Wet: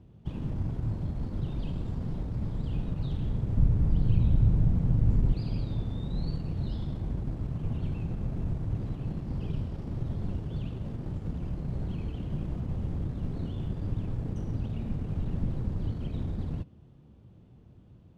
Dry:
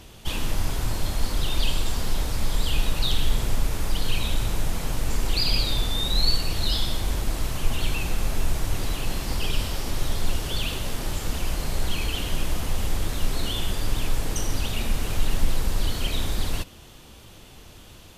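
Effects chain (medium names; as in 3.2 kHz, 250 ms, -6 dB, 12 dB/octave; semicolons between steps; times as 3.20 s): 3.57–5.32 s: bass shelf 160 Hz +10.5 dB; in parallel at -3 dB: crossover distortion -29.5 dBFS; on the sum: band-pass filter 140 Hz, Q 1.3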